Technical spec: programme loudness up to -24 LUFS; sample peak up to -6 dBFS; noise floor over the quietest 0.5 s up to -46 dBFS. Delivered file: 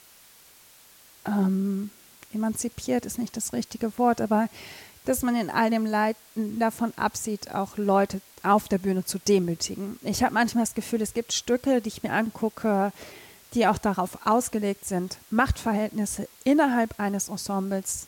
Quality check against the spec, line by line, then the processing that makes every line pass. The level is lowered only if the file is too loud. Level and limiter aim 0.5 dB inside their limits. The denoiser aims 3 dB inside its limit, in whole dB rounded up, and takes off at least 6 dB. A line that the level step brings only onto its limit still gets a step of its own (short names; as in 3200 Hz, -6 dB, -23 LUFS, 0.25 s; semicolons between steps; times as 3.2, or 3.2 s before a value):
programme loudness -26.0 LUFS: OK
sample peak -9.0 dBFS: OK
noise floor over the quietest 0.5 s -53 dBFS: OK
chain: none